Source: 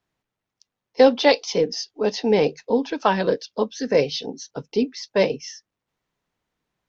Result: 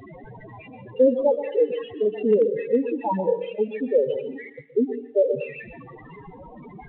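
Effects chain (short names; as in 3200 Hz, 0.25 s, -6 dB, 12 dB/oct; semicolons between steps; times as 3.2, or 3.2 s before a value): delta modulation 16 kbps, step -27 dBFS; 4.49–5.26 gate -27 dBFS, range -37 dB; low shelf 220 Hz -5 dB; notch 1400 Hz, Q 8.7; loudest bins only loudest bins 4; thinning echo 0.12 s, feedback 28%, high-pass 330 Hz, level -18.5 dB; on a send at -10 dB: reverb RT60 0.50 s, pre-delay 0.117 s; 1.6–3.27 on the sum: hard clip -13 dBFS, distortion -43 dB; gain +2.5 dB; G.726 40 kbps 8000 Hz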